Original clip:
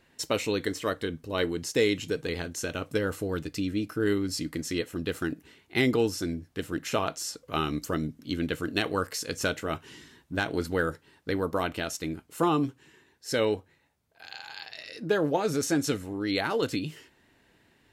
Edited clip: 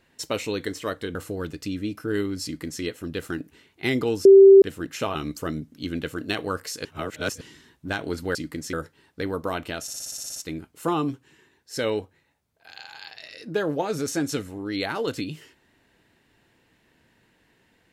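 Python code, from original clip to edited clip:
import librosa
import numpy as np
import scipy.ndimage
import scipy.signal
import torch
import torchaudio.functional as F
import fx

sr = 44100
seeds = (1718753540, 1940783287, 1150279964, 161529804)

y = fx.edit(x, sr, fx.cut(start_s=1.15, length_s=1.92),
    fx.duplicate(start_s=4.36, length_s=0.38, to_s=10.82),
    fx.bleep(start_s=6.17, length_s=0.37, hz=390.0, db=-6.5),
    fx.cut(start_s=7.07, length_s=0.55),
    fx.reverse_span(start_s=9.32, length_s=0.56),
    fx.stutter(start_s=11.91, slice_s=0.06, count=10), tone=tone)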